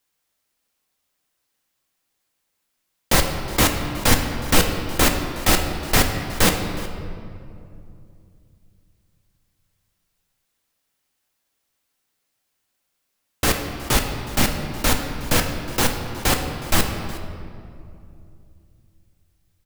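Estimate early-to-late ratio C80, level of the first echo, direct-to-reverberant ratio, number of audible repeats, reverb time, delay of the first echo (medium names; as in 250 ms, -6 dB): 6.5 dB, -18.0 dB, 3.0 dB, 1, 2.6 s, 366 ms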